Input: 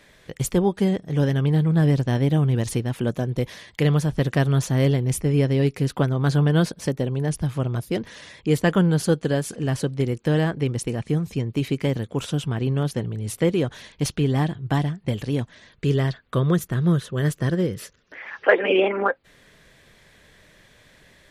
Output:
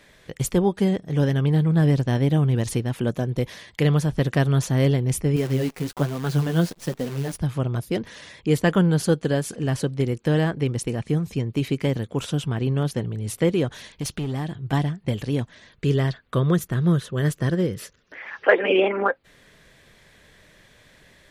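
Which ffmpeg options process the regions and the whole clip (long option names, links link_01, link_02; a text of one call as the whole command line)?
ffmpeg -i in.wav -filter_complex "[0:a]asettb=1/sr,asplit=3[link_01][link_02][link_03];[link_01]atrim=end=5.364[link_04];[link_02]atrim=start=5.36:end=7.38,asetpts=PTS-STARTPTS,afade=type=in:duration=0.004:curve=qsin,afade=type=out:start_time=2.016:duration=0.004:curve=qsin,flanger=delay=4.1:depth=7.9:regen=21:speed=1.2:shape=sinusoidal,acrusher=bits=7:dc=4:mix=0:aa=0.000001[link_05];[link_03]atrim=start=7.376[link_06];[link_04][link_05]acrossfade=duration=0.004:curve1=hsin:curve2=qsin[link_07];[link_07][link_06]acrossfade=duration=0.004:curve1=qsin:curve2=hsin,asettb=1/sr,asplit=3[link_08][link_09][link_10];[link_08]atrim=end=13.724[link_11];[link_09]atrim=start=13.72:end=14.73,asetpts=PTS-STARTPTS,afade=type=in:duration=0.004:curve=qsin,afade=type=out:start_time=1.006:duration=0.004:curve=qsin,aeval=exprs='clip(val(0),-1,0.106)':channel_layout=same,highshelf=frequency=5200:gain=4.5,acompressor=threshold=-26dB:ratio=2.5:attack=3.2:release=140:knee=1:detection=peak[link_12];[link_10]atrim=start=14.726[link_13];[link_11][link_12]acrossfade=duration=0.004:curve1=hsin:curve2=qsin[link_14];[link_14][link_13]acrossfade=duration=0.004:curve1=qsin:curve2=hsin" out.wav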